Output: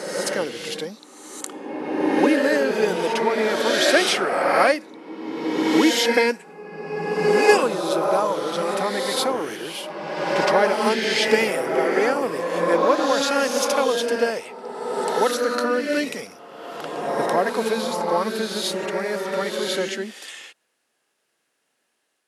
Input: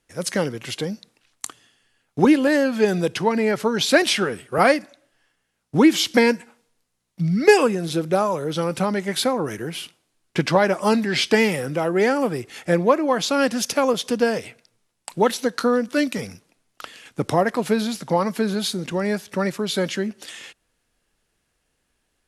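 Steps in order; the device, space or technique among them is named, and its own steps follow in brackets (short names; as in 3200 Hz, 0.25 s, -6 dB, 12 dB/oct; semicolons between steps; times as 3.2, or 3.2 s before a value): ghost voice (reverse; reverb RT60 2.1 s, pre-delay 37 ms, DRR 0 dB; reverse; HPF 330 Hz 12 dB/oct); gain -1.5 dB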